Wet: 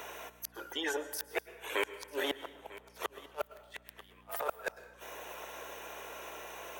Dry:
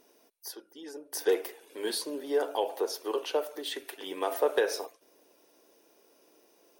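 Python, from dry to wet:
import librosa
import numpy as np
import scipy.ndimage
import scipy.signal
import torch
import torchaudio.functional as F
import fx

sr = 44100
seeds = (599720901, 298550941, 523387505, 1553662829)

p1 = fx.wiener(x, sr, points=9)
p2 = scipy.signal.sosfilt(scipy.signal.butter(2, 1000.0, 'highpass', fs=sr, output='sos'), p1)
p3 = fx.high_shelf(p2, sr, hz=6900.0, db=8.0)
p4 = fx.over_compress(p3, sr, threshold_db=-46.0, ratio=-1.0)
p5 = fx.gate_flip(p4, sr, shuts_db=-33.0, range_db=-42)
p6 = fx.add_hum(p5, sr, base_hz=60, snr_db=26)
p7 = p6 + fx.echo_single(p6, sr, ms=946, db=-23.0, dry=0)
p8 = fx.rev_plate(p7, sr, seeds[0], rt60_s=0.93, hf_ratio=0.75, predelay_ms=95, drr_db=15.5)
p9 = fx.band_squash(p8, sr, depth_pct=40)
y = p9 * librosa.db_to_amplitude(16.0)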